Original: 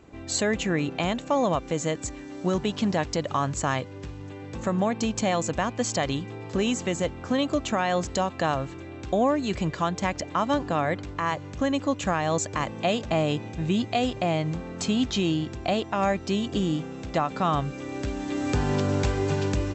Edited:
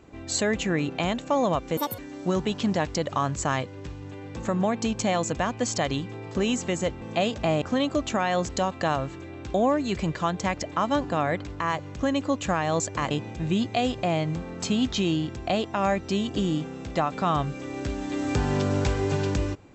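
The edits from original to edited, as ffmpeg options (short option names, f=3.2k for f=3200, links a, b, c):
-filter_complex "[0:a]asplit=6[a][b][c][d][e][f];[a]atrim=end=1.774[g];[b]atrim=start=1.77:end=2.17,asetpts=PTS-STARTPTS,asetrate=81585,aresample=44100,atrim=end_sample=9535,asetpts=PTS-STARTPTS[h];[c]atrim=start=2.166:end=7.202[i];[d]atrim=start=12.688:end=13.292[j];[e]atrim=start=7.198:end=12.692[k];[f]atrim=start=13.288[l];[g][h]acrossfade=d=0.004:c1=hsin:c2=hsin[m];[m][i]acrossfade=d=0.004:c1=hsin:c2=hsin[n];[n][j]acrossfade=d=0.004:c1=hsin:c2=hsin[o];[o][k]acrossfade=d=0.004:c1=hsin:c2=hsin[p];[p][l]acrossfade=d=0.004:c1=hsin:c2=hsin"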